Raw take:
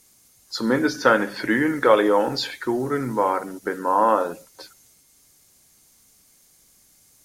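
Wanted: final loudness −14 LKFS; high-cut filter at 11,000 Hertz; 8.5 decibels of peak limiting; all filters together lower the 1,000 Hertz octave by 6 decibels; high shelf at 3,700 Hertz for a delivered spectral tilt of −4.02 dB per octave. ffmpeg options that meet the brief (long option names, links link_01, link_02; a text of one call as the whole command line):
ffmpeg -i in.wav -af "lowpass=11000,equalizer=frequency=1000:width_type=o:gain=-8,highshelf=frequency=3700:gain=7.5,volume=11dB,alimiter=limit=-2dB:level=0:latency=1" out.wav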